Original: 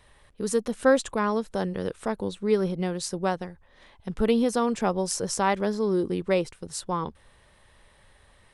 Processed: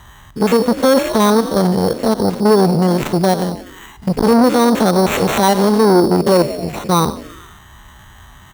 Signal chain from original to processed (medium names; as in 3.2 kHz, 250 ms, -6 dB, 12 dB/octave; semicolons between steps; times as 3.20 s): spectrogram pixelated in time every 50 ms; frequency-shifting echo 90 ms, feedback 62%, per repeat +40 Hz, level -17.5 dB; touch-sensitive phaser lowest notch 470 Hz, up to 3.6 kHz, full sweep at -26 dBFS; high-pass 40 Hz 12 dB/octave; in parallel at -0.5 dB: compression, threshold -32 dBFS, peak gain reduction 16 dB; on the sum: resampled via 16 kHz; sample-and-hold 9×; loudness maximiser +15.5 dB; transformer saturation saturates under 490 Hz